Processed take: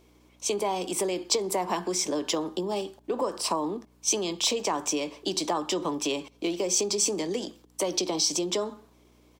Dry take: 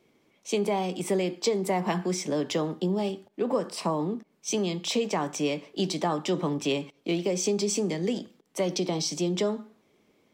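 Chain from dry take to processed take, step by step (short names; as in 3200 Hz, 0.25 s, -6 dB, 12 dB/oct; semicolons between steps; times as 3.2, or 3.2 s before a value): HPF 50 Hz 24 dB/oct; tempo 1.1×; thirty-one-band EQ 315 Hz +6 dB, 1000 Hz +6 dB, 2000 Hz -4 dB; compressor 2.5:1, threshold -27 dBFS, peak gain reduction 5.5 dB; hum 60 Hz, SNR 22 dB; tone controls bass -13 dB, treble +6 dB; gain +3 dB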